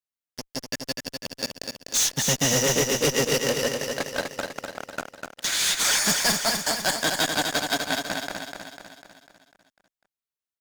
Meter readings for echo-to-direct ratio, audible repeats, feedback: -3.5 dB, 6, 53%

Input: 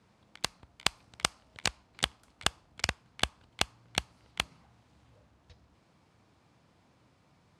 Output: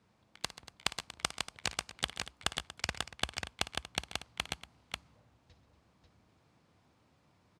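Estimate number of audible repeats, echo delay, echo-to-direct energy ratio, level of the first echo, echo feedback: 4, 56 ms, -3.0 dB, -15.0 dB, no steady repeat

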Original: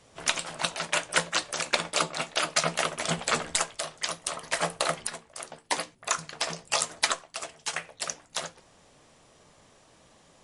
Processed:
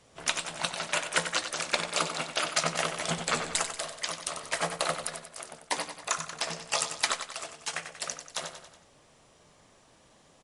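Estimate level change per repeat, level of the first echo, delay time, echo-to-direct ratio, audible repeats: -5.5 dB, -9.0 dB, 93 ms, -7.5 dB, 4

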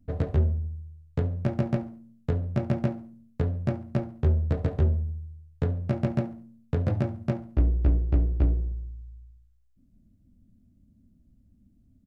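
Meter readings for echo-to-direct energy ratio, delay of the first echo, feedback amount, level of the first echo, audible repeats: -19.5 dB, 70 ms, 35%, -20.0 dB, 2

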